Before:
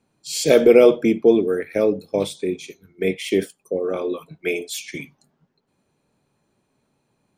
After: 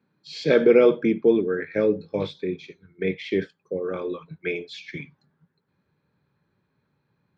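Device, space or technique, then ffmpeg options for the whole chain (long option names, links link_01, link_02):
guitar cabinet: -filter_complex "[0:a]lowpass=7100,asubboost=boost=6.5:cutoff=84,asettb=1/sr,asplit=3[link_01][link_02][link_03];[link_01]atrim=end=1.564[link_04];[link_02]atrim=start=1.56:end=2.31,asetpts=PTS-STARTPTS,afade=type=in:duration=0.004:curve=qsin,afade=type=out:start_time=0.746:duration=0.004:curve=qsin,asplit=2[link_05][link_06];[link_06]adelay=19,volume=-6dB[link_07];[link_05][link_07]amix=inputs=2:normalize=0,atrim=end_sample=33075[link_08];[link_03]atrim=start=2.306[link_09];[link_04][link_08]acrossfade=duration=0.004:curve1=hsin:curve2=qsin[link_10];[link_10][link_09]acrossfade=duration=0.004:curve1=qsin:curve2=hsin,highpass=110,equalizer=frequency=170:width_type=q:width=4:gain=7,equalizer=frequency=690:width_type=q:width=4:gain=-9,equalizer=frequency=1600:width_type=q:width=4:gain=6,equalizer=frequency=2900:width_type=q:width=4:gain=-7,lowpass=frequency=4200:width=0.5412,lowpass=frequency=4200:width=1.3066,volume=-2.5dB"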